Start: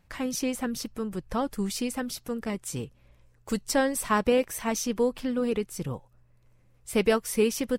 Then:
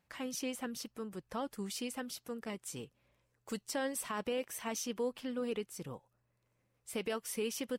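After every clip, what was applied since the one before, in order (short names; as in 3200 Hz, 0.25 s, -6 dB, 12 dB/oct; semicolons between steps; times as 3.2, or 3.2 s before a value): HPF 240 Hz 6 dB/oct; dynamic EQ 3000 Hz, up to +5 dB, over -53 dBFS, Q 4.8; limiter -19 dBFS, peak gain reduction 8.5 dB; gain -8 dB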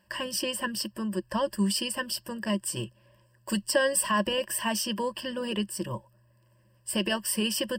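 ripple EQ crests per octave 1.3, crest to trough 18 dB; gain +8 dB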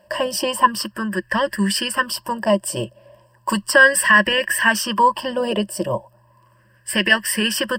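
LFO bell 0.35 Hz 620–1900 Hz +17 dB; gain +6 dB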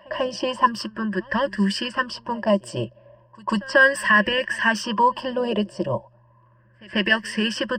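EQ curve 110 Hz 0 dB, 6400 Hz -6 dB, 10000 Hz -20 dB; low-pass opened by the level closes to 1800 Hz, open at -18 dBFS; pre-echo 0.142 s -23.5 dB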